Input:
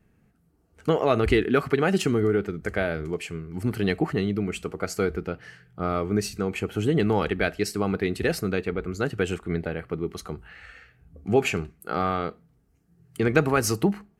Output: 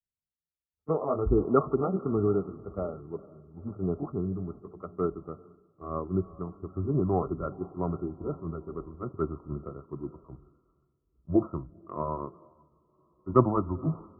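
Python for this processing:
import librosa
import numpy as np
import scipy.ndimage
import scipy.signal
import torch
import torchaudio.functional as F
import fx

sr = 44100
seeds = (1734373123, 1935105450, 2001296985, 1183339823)

y = fx.pitch_glide(x, sr, semitones=-4.0, runs='starting unshifted')
y = fx.brickwall_lowpass(y, sr, high_hz=1400.0)
y = fx.echo_diffused(y, sr, ms=469, feedback_pct=55, wet_db=-15.0)
y = fx.spec_freeze(y, sr, seeds[0], at_s=12.69, hold_s=0.57)
y = fx.band_widen(y, sr, depth_pct=100)
y = F.gain(torch.from_numpy(y), -5.0).numpy()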